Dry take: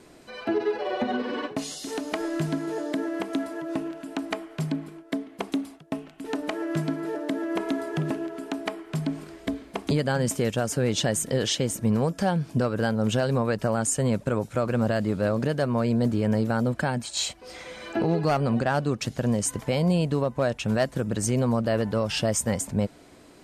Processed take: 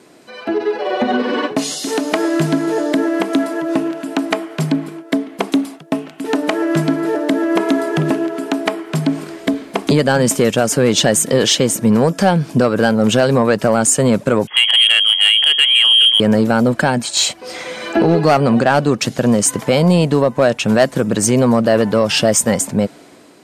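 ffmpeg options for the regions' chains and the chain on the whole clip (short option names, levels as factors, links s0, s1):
-filter_complex "[0:a]asettb=1/sr,asplit=3[s0][s1][s2];[s0]atrim=end=14.474[s3];[s1]atrim=start=14.47:end=16.2,asetpts=PTS-STARTPTS,afade=t=in:d=0.004:c=qsin,afade=t=out:st=1.726:d=0.004:c=qsin,lowpass=f=2900:t=q:w=0.5098,lowpass=f=2900:t=q:w=0.6013,lowpass=f=2900:t=q:w=0.9,lowpass=f=2900:t=q:w=2.563,afreqshift=-3400,asoftclip=type=hard:threshold=0.141[s4];[s2]atrim=start=16.196[s5];[s3][s4]acrossfade=d=0.004:c1=hsin:c2=qsin[s6];[s6][s5]acrossfade=d=0.004:c1=qsin:c2=hsin,dynaudnorm=f=380:g=5:m=2.37,highpass=160,acontrast=43"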